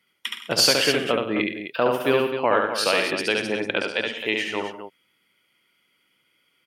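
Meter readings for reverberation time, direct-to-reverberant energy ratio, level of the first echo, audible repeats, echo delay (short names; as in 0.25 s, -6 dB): none, none, -3.0 dB, 5, 70 ms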